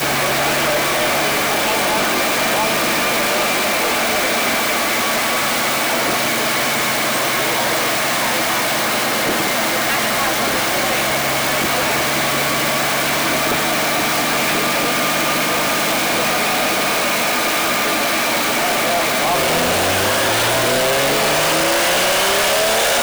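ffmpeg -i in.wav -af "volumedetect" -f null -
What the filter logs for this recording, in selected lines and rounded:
mean_volume: -17.3 dB
max_volume: -14.2 dB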